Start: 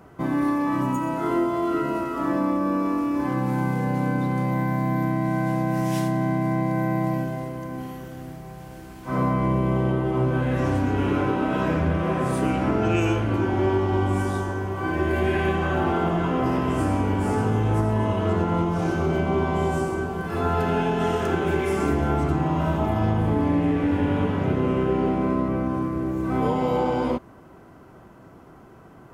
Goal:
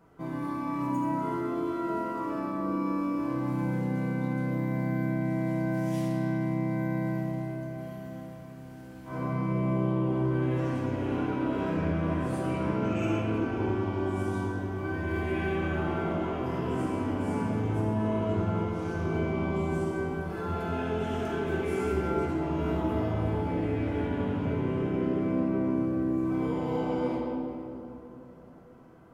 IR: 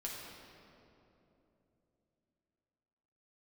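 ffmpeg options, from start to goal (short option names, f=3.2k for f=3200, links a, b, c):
-filter_complex "[0:a]asettb=1/sr,asplit=3[a][b][c];[a]atrim=end=21.684[d];[b]atrim=start=21.68:end=24.06,asetpts=PTS-STARTPTS,afade=t=in:d=0.004:c=qsin,afade=t=out:st=2.376:d=0.004:c=qsin,asplit=2[e][f];[f]adelay=16,volume=-3dB[g];[e][g]amix=inputs=2:normalize=0,atrim=end_sample=104958[h];[c]atrim=start=24.056[i];[d][h]acrossfade=d=0.004:c1=hsin:c2=qsin[j];[j][i]acrossfade=d=0.004:c1=qsin:c2=hsin[k];[1:a]atrim=start_sample=2205[l];[k][l]afir=irnorm=-1:irlink=0,volume=-8dB"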